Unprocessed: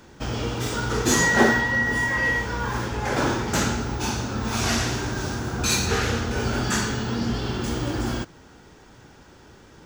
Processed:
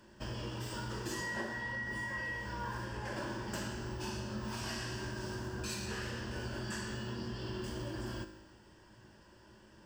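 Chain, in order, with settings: rippled EQ curve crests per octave 1.3, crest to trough 9 dB; compression 6:1, threshold -25 dBFS, peak gain reduction 13 dB; feedback comb 53 Hz, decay 1.1 s, harmonics all, mix 70%; trim -3.5 dB

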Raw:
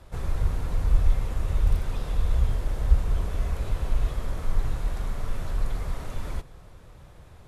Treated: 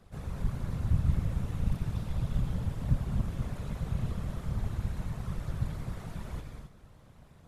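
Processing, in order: gated-style reverb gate 290 ms rising, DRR 3.5 dB; whisper effect; trim -8.5 dB

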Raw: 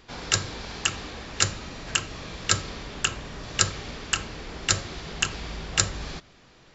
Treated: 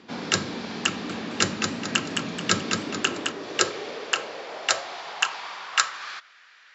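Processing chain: high-pass 71 Hz; bass shelf 110 Hz +6 dB; high-pass sweep 220 Hz -> 1.6 kHz, 2.52–6.49 s; distance through air 72 m; 0.88–3.32 s: modulated delay 216 ms, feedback 39%, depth 78 cents, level -4.5 dB; trim +2.5 dB

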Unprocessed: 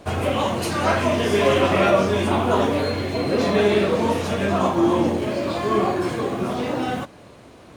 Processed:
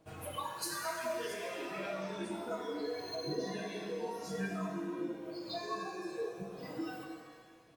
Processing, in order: spectral noise reduction 22 dB; compression 10:1, threshold -37 dBFS, peak gain reduction 23.5 dB; phaser 0.9 Hz, delay 2.7 ms, feedback 32%; treble shelf 11 kHz +10 dB; comb 6.3 ms, depth 59%; pitch-shifted reverb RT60 1.7 s, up +7 st, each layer -8 dB, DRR 2 dB; trim -3.5 dB

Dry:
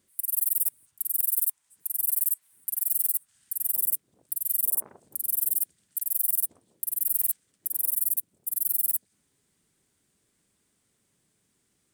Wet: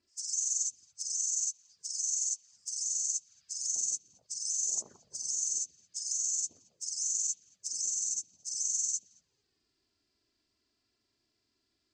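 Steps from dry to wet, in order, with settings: knee-point frequency compression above 1.5 kHz 1.5:1; touch-sensitive flanger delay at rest 3 ms, full sweep at -25.5 dBFS; repeats whose band climbs or falls 223 ms, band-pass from 2.6 kHz, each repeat -1.4 oct, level -11.5 dB; trim -3.5 dB

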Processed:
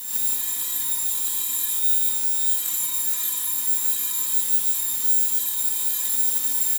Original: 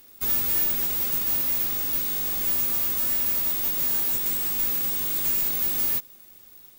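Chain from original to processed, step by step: bit-reversed sample order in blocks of 64 samples; high-pass 210 Hz 12 dB/octave; peaking EQ 13 kHz +10.5 dB 1.9 oct; comb 4.1 ms, depth 90%; compressor with a negative ratio -27 dBFS, ratio -1; gated-style reverb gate 160 ms rising, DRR -8 dB; crackling interface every 0.15 s, samples 1024, repeat, from 0.84 s; trim -6 dB

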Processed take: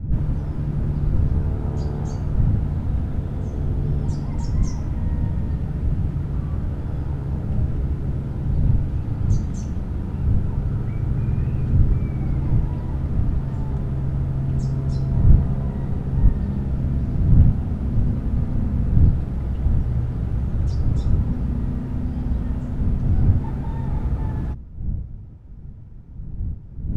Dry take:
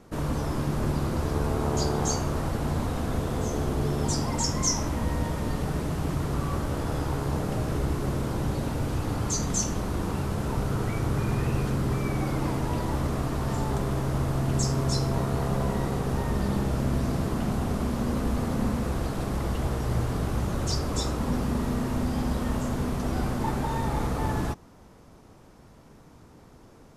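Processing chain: wind noise 120 Hz -28 dBFS; tone controls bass +14 dB, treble -12 dB; band-stop 1.1 kHz, Q 8.9; trim -8.5 dB

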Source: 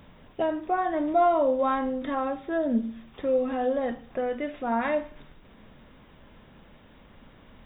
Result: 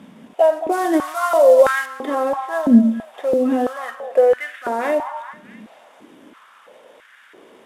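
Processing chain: CVSD coder 64 kbps; 0.72–1.86 s: treble shelf 2.1 kHz +10.5 dB; peak limiter -19 dBFS, peak gain reduction 8 dB; repeats whose band climbs or falls 218 ms, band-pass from 880 Hz, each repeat 0.7 oct, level -9.5 dB; step-sequenced high-pass 3 Hz 220–1600 Hz; trim +5 dB

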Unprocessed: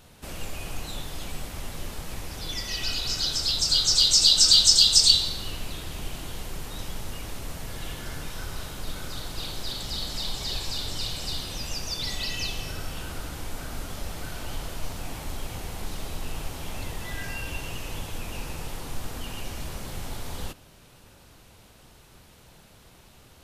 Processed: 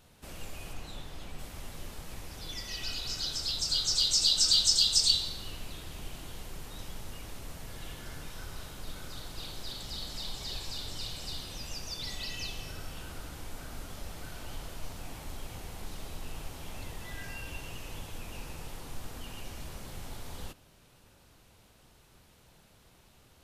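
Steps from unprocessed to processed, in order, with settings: 0.72–1.38 s: treble shelf 8.2 kHz -> 4.4 kHz -8.5 dB; trim -7.5 dB

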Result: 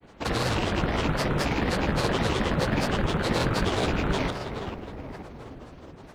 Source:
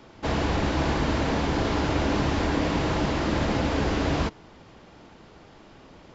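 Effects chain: rattle on loud lows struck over -31 dBFS, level -20 dBFS; filtered feedback delay 451 ms, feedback 61%, low-pass 1.8 kHz, level -8 dB; companded quantiser 8-bit; granulator, grains 19 per s, spray 37 ms, pitch spread up and down by 12 st

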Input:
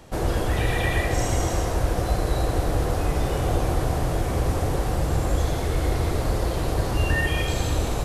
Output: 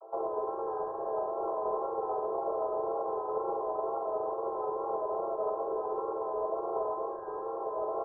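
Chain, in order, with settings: vocoder on a held chord minor triad, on A3; peak limiter -27 dBFS, peak gain reduction 11.5 dB; on a send: flutter echo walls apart 7.7 m, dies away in 0.65 s; on the sum: wow and flutter 51 cents; steep high-pass 390 Hz 72 dB/octave; comb 5 ms, depth 42%; in parallel at -4 dB: hard clipper -38 dBFS, distortion -9 dB; on the sum: steep low-pass 1.3 kHz 96 dB/octave; upward expansion 1.5:1, over -41 dBFS; trim +4 dB

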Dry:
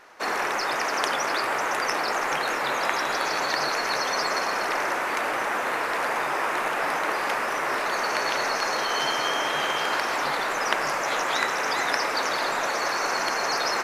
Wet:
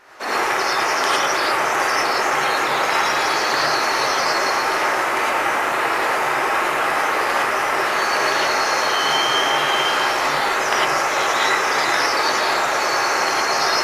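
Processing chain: gated-style reverb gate 130 ms rising, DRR -6 dB

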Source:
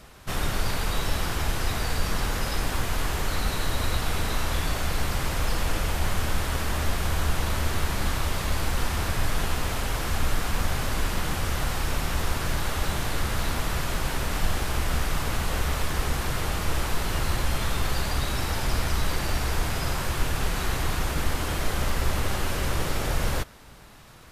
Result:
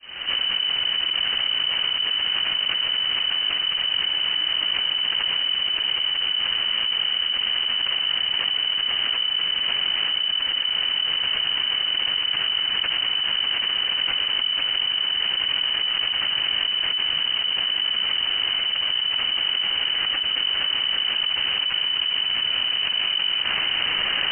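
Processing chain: fade-in on the opening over 1.12 s; distance through air 310 m; frequency inversion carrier 3 kHz; level flattener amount 100%; trim -7.5 dB

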